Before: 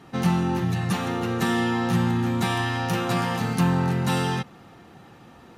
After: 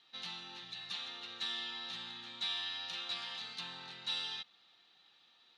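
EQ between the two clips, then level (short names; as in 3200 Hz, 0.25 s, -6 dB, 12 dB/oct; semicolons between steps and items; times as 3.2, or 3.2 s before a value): band-pass 3800 Hz, Q 5.8; air absorption 50 m; +3.5 dB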